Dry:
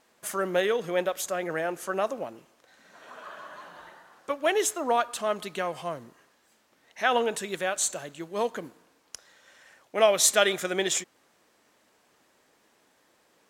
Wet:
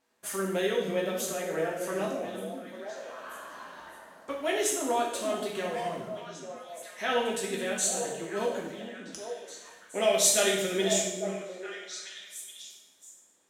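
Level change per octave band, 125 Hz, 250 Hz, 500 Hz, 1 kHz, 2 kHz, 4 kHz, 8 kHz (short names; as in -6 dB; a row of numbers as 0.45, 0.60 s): +2.5, +1.5, -1.5, -4.0, -3.5, -1.0, 0.0 dB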